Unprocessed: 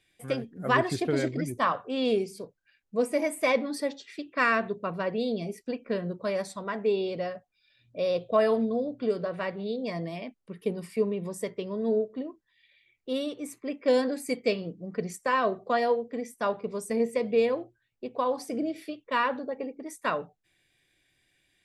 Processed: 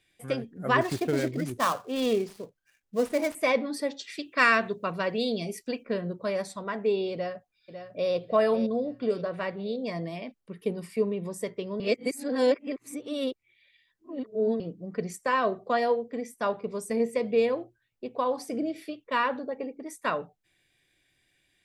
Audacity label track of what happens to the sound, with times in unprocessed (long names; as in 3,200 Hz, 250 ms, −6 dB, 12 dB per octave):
0.810000	3.350000	gap after every zero crossing of 0.091 ms
3.990000	5.830000	high-shelf EQ 2,100 Hz +9.5 dB
7.130000	8.110000	delay throw 550 ms, feedback 40%, level −9.5 dB
11.800000	14.600000	reverse